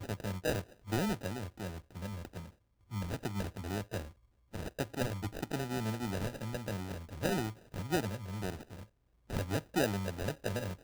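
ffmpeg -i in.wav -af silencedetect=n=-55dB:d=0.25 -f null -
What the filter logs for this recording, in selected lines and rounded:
silence_start: 2.52
silence_end: 2.90 | silence_duration: 0.38
silence_start: 4.13
silence_end: 4.53 | silence_duration: 0.40
silence_start: 8.86
silence_end: 9.29 | silence_duration: 0.43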